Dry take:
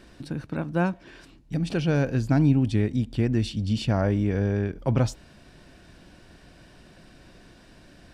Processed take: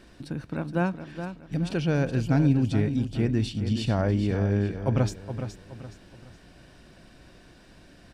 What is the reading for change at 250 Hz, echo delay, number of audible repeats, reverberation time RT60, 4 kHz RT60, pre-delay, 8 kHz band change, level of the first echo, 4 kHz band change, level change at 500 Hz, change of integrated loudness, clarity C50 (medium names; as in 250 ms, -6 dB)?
-1.0 dB, 420 ms, 3, no reverb, no reverb, no reverb, -1.0 dB, -9.5 dB, -1.0 dB, -1.0 dB, -1.5 dB, no reverb